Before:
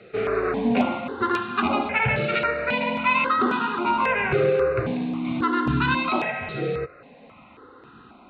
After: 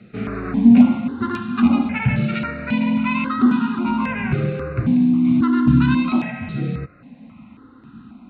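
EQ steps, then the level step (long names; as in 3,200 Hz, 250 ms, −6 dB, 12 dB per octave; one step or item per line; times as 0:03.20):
low shelf with overshoot 320 Hz +10 dB, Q 3
−3.5 dB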